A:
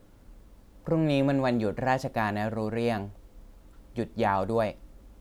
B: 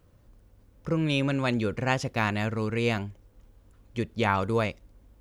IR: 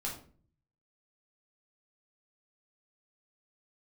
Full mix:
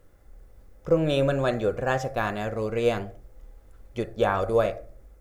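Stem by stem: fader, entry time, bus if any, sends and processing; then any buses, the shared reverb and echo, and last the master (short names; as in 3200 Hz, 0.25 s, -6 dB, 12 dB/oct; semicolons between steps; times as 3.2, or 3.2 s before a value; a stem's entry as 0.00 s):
+1.5 dB, 0.00 s, send -3.5 dB, fixed phaser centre 900 Hz, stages 6; upward expander 1.5:1, over -38 dBFS
-1.5 dB, 0.00 s, no send, AGC gain up to 13.5 dB; auto duck -12 dB, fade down 0.80 s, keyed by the first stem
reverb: on, RT60 0.45 s, pre-delay 8 ms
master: bell 110 Hz -4 dB 0.93 oct; small resonant body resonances 820/2000/3500 Hz, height 9 dB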